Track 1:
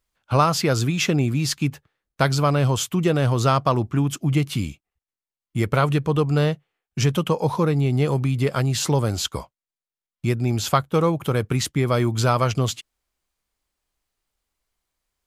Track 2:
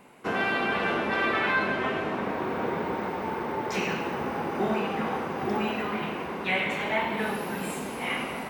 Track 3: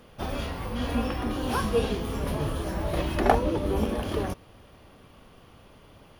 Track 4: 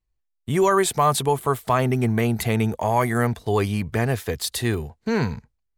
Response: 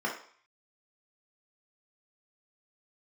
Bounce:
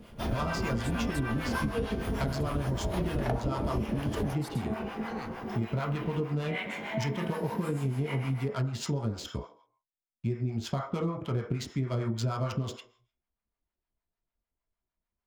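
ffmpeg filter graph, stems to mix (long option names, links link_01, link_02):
-filter_complex "[0:a]adynamicsmooth=sensitivity=4:basefreq=2600,volume=-5.5dB,asplit=2[link_01][link_02];[link_02]volume=-10.5dB[link_03];[1:a]highshelf=frequency=2300:gain=10,volume=-11dB,asplit=2[link_04][link_05];[link_05]volume=-5dB[link_06];[2:a]volume=2.5dB,asplit=2[link_07][link_08];[link_08]volume=-13.5dB[link_09];[3:a]adynamicequalizer=threshold=0.0251:dfrequency=1500:dqfactor=0.7:tfrequency=1500:tqfactor=0.7:attack=5:release=100:ratio=0.375:range=3:mode=boostabove:tftype=highshelf,volume=-18.5dB,asplit=2[link_10][link_11];[link_11]apad=whole_len=374774[link_12];[link_04][link_12]sidechaincompress=threshold=-41dB:ratio=8:attack=16:release=493[link_13];[4:a]atrim=start_sample=2205[link_14];[link_03][link_06][link_09]amix=inputs=3:normalize=0[link_15];[link_15][link_14]afir=irnorm=-1:irlink=0[link_16];[link_01][link_13][link_07][link_10][link_16]amix=inputs=5:normalize=0,lowshelf=frequency=500:gain=3,acrossover=split=650[link_17][link_18];[link_17]aeval=exprs='val(0)*(1-0.7/2+0.7/2*cos(2*PI*6.6*n/s))':channel_layout=same[link_19];[link_18]aeval=exprs='val(0)*(1-0.7/2-0.7/2*cos(2*PI*6.6*n/s))':channel_layout=same[link_20];[link_19][link_20]amix=inputs=2:normalize=0,acompressor=threshold=-27dB:ratio=6"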